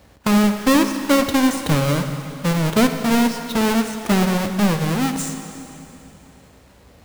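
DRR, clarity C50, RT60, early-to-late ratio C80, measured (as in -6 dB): 6.0 dB, 7.0 dB, 3.0 s, 8.0 dB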